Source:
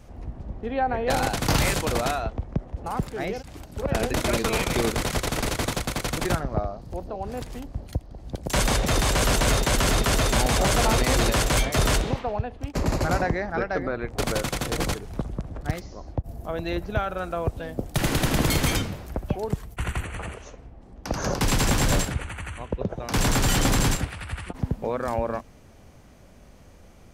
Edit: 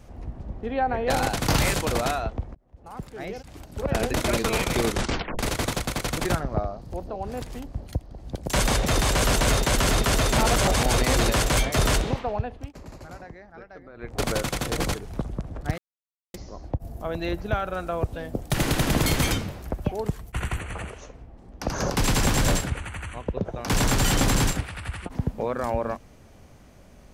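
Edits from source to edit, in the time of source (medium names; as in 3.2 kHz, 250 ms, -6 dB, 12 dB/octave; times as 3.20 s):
2.55–3.83 s: fade in
4.89 s: tape stop 0.50 s
10.38–10.94 s: reverse
12.54–14.17 s: dip -18 dB, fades 0.23 s
15.78 s: insert silence 0.56 s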